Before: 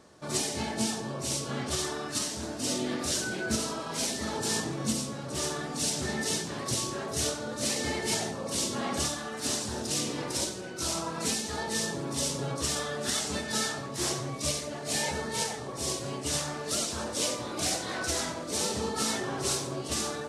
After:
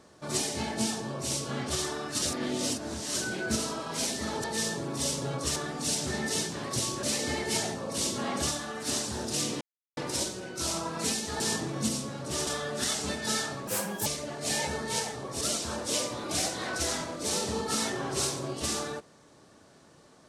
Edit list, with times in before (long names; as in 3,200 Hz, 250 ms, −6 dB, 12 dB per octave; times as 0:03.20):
0:02.22–0:03.15: reverse
0:04.44–0:05.51: swap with 0:11.61–0:12.73
0:06.98–0:07.60: remove
0:10.18: splice in silence 0.36 s
0:13.93–0:14.50: play speed 146%
0:15.85–0:16.69: remove